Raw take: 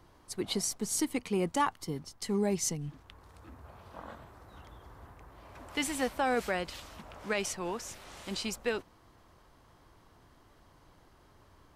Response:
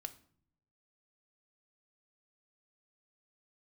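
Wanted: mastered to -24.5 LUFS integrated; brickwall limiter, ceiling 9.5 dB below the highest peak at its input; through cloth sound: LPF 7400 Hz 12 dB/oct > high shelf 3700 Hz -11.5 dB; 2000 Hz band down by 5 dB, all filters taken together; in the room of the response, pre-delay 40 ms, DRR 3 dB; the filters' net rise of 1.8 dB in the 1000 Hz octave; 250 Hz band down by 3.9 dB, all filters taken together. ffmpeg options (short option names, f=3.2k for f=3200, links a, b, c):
-filter_complex "[0:a]equalizer=f=250:t=o:g=-5.5,equalizer=f=1k:t=o:g=4.5,equalizer=f=2k:t=o:g=-5,alimiter=level_in=1.5dB:limit=-24dB:level=0:latency=1,volume=-1.5dB,asplit=2[a][b];[1:a]atrim=start_sample=2205,adelay=40[c];[b][c]afir=irnorm=-1:irlink=0,volume=0.5dB[d];[a][d]amix=inputs=2:normalize=0,lowpass=7.4k,highshelf=f=3.7k:g=-11.5,volume=13.5dB"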